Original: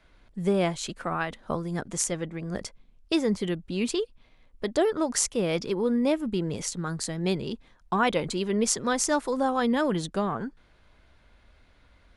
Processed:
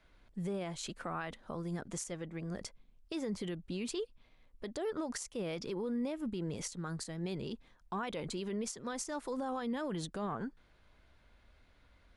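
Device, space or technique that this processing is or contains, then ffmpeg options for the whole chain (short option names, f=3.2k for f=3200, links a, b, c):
stacked limiters: -af "alimiter=limit=-12.5dB:level=0:latency=1:release=459,alimiter=limit=-16.5dB:level=0:latency=1:release=231,alimiter=limit=-23.5dB:level=0:latency=1:release=57,volume=-6dB"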